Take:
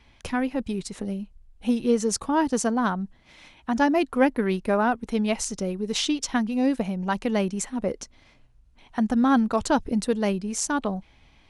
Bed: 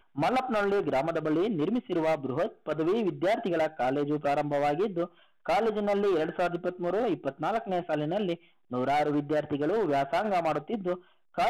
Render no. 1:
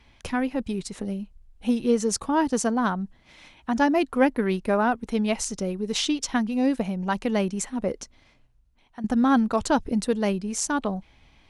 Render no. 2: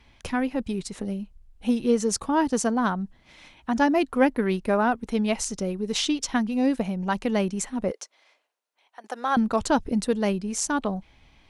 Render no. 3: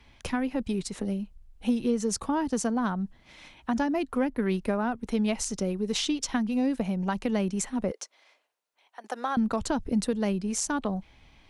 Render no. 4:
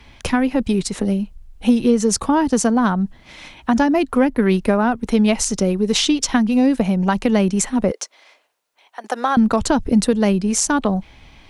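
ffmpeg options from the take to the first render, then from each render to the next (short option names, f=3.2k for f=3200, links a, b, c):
-filter_complex "[0:a]asplit=2[a][b];[a]atrim=end=9.04,asetpts=PTS-STARTPTS,afade=t=out:st=7.93:d=1.11:silence=0.211349[c];[b]atrim=start=9.04,asetpts=PTS-STARTPTS,afade=t=in:d=0.004:c=hsin:silence=0.211349[d];[c][d]concat=n=2:v=0:a=1"
-filter_complex "[0:a]asettb=1/sr,asplit=3[a][b][c];[a]atrim=end=7.914[d];[b]atrim=start=7.91:end=9.37,asetpts=PTS-STARTPTS,afade=t=in:d=0.004:c=qsin,afade=t=out:st=1.456:d=0.004:c=qsin,highpass=f=470:w=0.5412,highpass=f=470:w=1.3066[e];[c]atrim=start=9.366[f];[d][e]acrossfade=d=0.004:c1=hsin:c2=qsin[g];[g][f]acrossfade=d=0.004:c1=qsin:c2=hsin"
-filter_complex "[0:a]acrossover=split=210[a][b];[b]acompressor=threshold=-26dB:ratio=6[c];[a][c]amix=inputs=2:normalize=0"
-af "volume=11dB"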